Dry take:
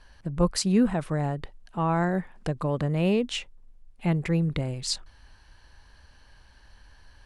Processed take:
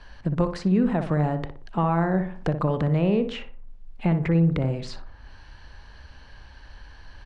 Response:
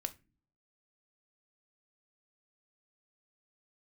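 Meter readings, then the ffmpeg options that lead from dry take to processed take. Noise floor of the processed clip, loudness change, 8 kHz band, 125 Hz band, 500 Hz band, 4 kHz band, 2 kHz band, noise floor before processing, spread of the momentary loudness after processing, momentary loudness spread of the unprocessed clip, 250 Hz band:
-48 dBFS, +3.0 dB, under -15 dB, +4.0 dB, +2.5 dB, -8.0 dB, +0.5 dB, -56 dBFS, 11 LU, 10 LU, +2.5 dB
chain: -filter_complex "[0:a]lowpass=4.7k,acrossover=split=95|1900[a][b][c];[a]acompressor=threshold=-44dB:ratio=4[d];[b]acompressor=threshold=-28dB:ratio=4[e];[c]acompressor=threshold=-54dB:ratio=4[f];[d][e][f]amix=inputs=3:normalize=0,asplit=2[g][h];[h]adelay=60,lowpass=f=1.6k:p=1,volume=-7.5dB,asplit=2[i][j];[j]adelay=60,lowpass=f=1.6k:p=1,volume=0.43,asplit=2[k][l];[l]adelay=60,lowpass=f=1.6k:p=1,volume=0.43,asplit=2[m][n];[n]adelay=60,lowpass=f=1.6k:p=1,volume=0.43,asplit=2[o][p];[p]adelay=60,lowpass=f=1.6k:p=1,volume=0.43[q];[i][k][m][o][q]amix=inputs=5:normalize=0[r];[g][r]amix=inputs=2:normalize=0,volume=7.5dB"

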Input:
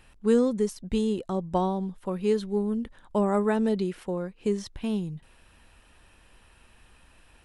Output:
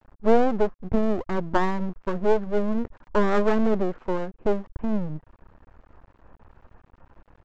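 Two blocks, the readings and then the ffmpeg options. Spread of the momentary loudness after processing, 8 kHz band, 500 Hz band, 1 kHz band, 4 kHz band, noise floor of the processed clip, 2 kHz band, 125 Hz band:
9 LU, n/a, +3.0 dB, +5.5 dB, -1.0 dB, -65 dBFS, +8.5 dB, +1.0 dB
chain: -af "lowpass=f=1.3k:w=0.5412,lowpass=f=1.3k:w=1.3066,aresample=16000,aeval=exprs='max(val(0),0)':c=same,aresample=44100,volume=9dB"

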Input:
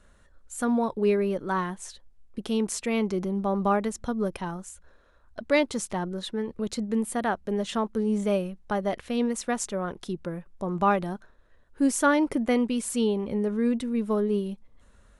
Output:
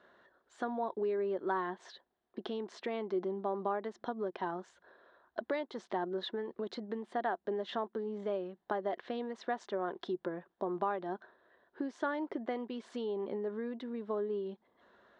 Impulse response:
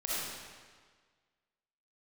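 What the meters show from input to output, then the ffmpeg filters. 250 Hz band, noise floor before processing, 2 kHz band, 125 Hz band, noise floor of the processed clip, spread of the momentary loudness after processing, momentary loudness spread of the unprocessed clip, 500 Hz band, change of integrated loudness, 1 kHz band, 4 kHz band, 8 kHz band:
-14.5 dB, -58 dBFS, -10.5 dB, -17.0 dB, -79 dBFS, 7 LU, 11 LU, -7.5 dB, -10.5 dB, -7.5 dB, -10.0 dB, under -25 dB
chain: -af "acompressor=threshold=-33dB:ratio=6,highpass=270,equalizer=f=370:t=q:w=4:g=9,equalizer=f=700:t=q:w=4:g=8,equalizer=f=990:t=q:w=4:g=5,equalizer=f=1.7k:t=q:w=4:g=6,equalizer=f=2.5k:t=q:w=4:g=-7,equalizer=f=3.6k:t=q:w=4:g=3,lowpass=f=4.1k:w=0.5412,lowpass=f=4.1k:w=1.3066,volume=-2.5dB"

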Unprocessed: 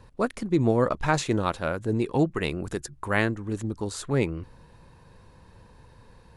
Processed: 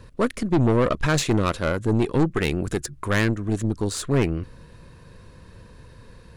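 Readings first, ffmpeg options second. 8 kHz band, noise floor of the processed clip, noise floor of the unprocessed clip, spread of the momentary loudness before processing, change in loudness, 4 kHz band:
+6.0 dB, -48 dBFS, -54 dBFS, 9 LU, +3.5 dB, +5.5 dB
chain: -af "equalizer=f=830:w=4.5:g=-14,aeval=exprs='(tanh(14.1*val(0)+0.5)-tanh(0.5))/14.1':c=same,volume=8.5dB"

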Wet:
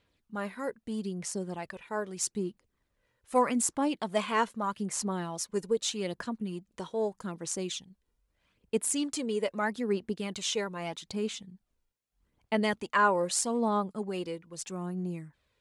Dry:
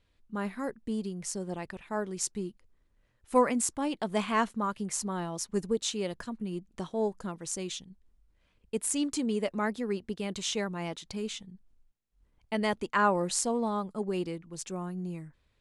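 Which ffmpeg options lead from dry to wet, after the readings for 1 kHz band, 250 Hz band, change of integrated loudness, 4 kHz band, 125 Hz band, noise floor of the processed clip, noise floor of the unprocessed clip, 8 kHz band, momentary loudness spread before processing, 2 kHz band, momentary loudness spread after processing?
+1.0 dB, -1.0 dB, +0.5 dB, +1.0 dB, -1.0 dB, -80 dBFS, -71 dBFS, +0.5 dB, 11 LU, +1.5 dB, 11 LU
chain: -af "aphaser=in_gain=1:out_gain=1:delay=2.1:decay=0.4:speed=0.8:type=sinusoidal,highpass=f=170:p=1"

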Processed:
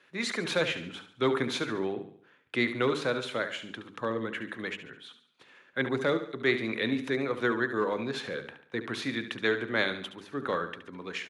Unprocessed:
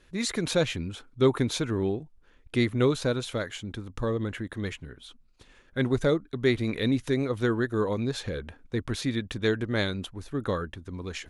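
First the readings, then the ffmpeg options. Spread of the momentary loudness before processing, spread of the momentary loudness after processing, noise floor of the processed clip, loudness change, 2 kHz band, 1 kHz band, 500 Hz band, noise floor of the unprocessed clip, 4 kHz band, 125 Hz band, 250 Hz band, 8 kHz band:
12 LU, 11 LU, -63 dBFS, -2.5 dB, +4.0 dB, +2.5 dB, -2.5 dB, -60 dBFS, -0.5 dB, -11.5 dB, -4.5 dB, -7.0 dB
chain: -filter_complex "[0:a]highpass=f=130:w=0.5412,highpass=f=130:w=1.3066,bass=f=250:g=-7,treble=f=4k:g=-14,bandreject=f=50:t=h:w=6,bandreject=f=100:t=h:w=6,bandreject=f=150:t=h:w=6,bandreject=f=200:t=h:w=6,bandreject=f=250:t=h:w=6,bandreject=f=300:t=h:w=6,bandreject=f=350:t=h:w=6,bandreject=f=400:t=h:w=6,bandreject=f=450:t=h:w=6,acrossover=split=340|1100[a][b][c];[b]asoftclip=type=hard:threshold=-26dB[d];[c]acontrast=50[e];[a][d][e]amix=inputs=3:normalize=0,aecho=1:1:71|142|213|284|355:0.282|0.124|0.0546|0.024|0.0106,volume=-1dB"

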